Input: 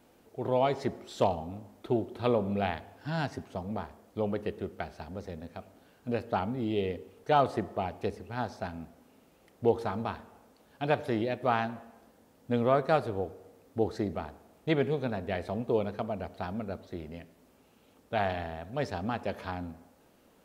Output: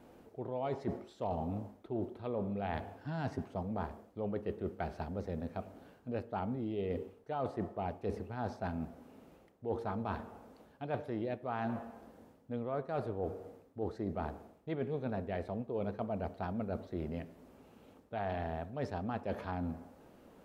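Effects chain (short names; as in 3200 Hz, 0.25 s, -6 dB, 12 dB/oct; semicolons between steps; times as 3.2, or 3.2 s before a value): high shelf 2000 Hz -10.5 dB; reverse; compressor 16:1, threshold -38 dBFS, peak gain reduction 19 dB; reverse; gain +5 dB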